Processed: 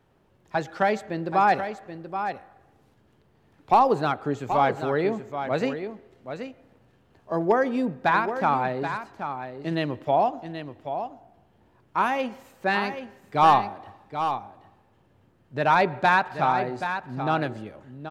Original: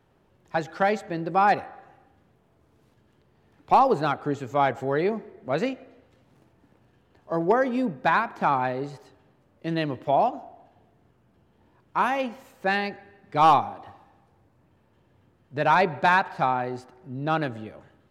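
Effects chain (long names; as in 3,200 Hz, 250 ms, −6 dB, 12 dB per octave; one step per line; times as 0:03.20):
single-tap delay 779 ms −9 dB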